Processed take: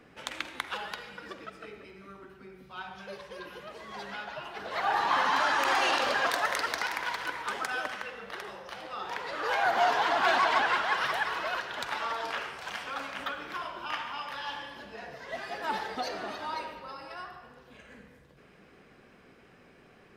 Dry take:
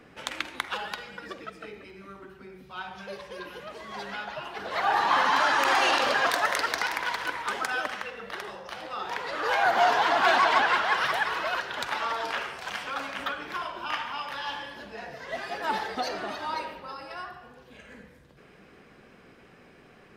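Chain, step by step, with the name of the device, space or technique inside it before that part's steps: saturated reverb return (on a send at -11.5 dB: reverb RT60 2.1 s, pre-delay 68 ms + soft clip -25 dBFS, distortion -9 dB); on the sum: gain -3.5 dB

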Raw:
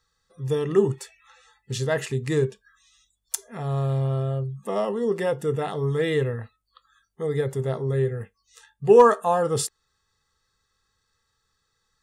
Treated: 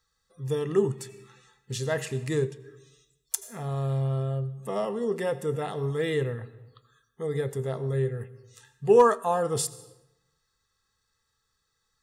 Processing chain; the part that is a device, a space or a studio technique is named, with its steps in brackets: compressed reverb return (on a send at -12 dB: reverb RT60 0.85 s, pre-delay 75 ms + compressor, threshold -25 dBFS, peak gain reduction 15 dB); on the sum: high shelf 8500 Hz +6 dB; gain -4 dB

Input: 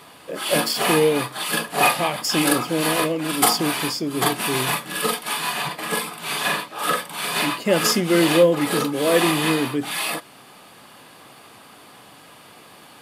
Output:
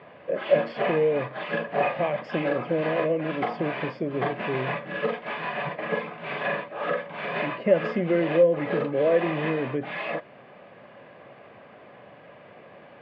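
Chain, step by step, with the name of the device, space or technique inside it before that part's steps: bass amplifier (compressor 3:1, threshold -21 dBFS, peak gain reduction 8.5 dB; speaker cabinet 78–2200 Hz, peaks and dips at 290 Hz -6 dB, 570 Hz +9 dB, 880 Hz -6 dB, 1300 Hz -8 dB)

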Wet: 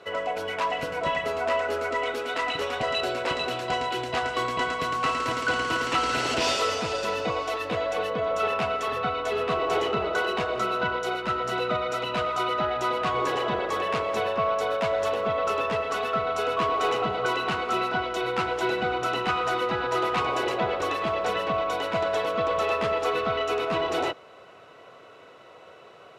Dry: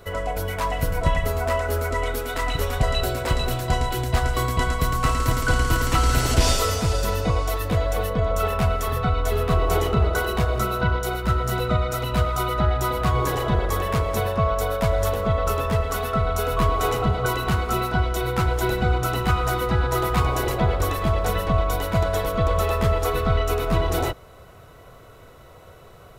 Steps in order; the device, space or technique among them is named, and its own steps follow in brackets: intercom (BPF 300–4900 Hz; bell 2700 Hz +6 dB 0.28 oct; soft clip -15 dBFS, distortion -24 dB)

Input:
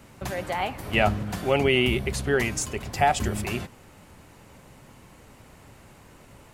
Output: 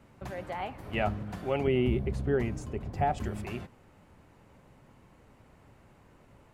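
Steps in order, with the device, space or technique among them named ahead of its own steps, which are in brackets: 1.67–3.18 tilt shelf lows +6 dB, about 760 Hz; through cloth (high shelf 3200 Hz -11.5 dB); gain -7 dB

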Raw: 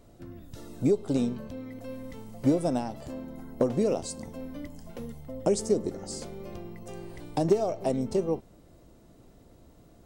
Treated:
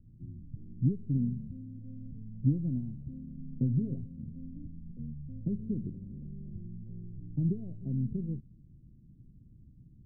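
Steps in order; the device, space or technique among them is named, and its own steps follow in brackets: 3.37–4.12 comb 7.5 ms, depth 51%; the neighbour's flat through the wall (LPF 220 Hz 24 dB/oct; bell 130 Hz +6 dB 0.67 oct)

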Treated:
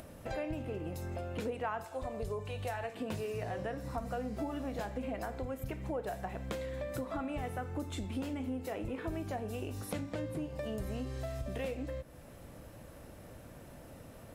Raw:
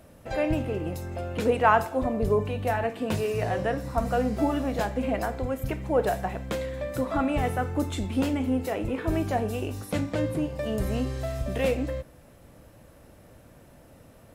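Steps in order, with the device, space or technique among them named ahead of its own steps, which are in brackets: 1.84–2.95 graphic EQ 250/4000/8000 Hz -10/+4/+6 dB; upward and downward compression (upward compressor, threshold -47 dBFS; compressor 4:1, threshold -37 dBFS, peak gain reduction 18.5 dB)

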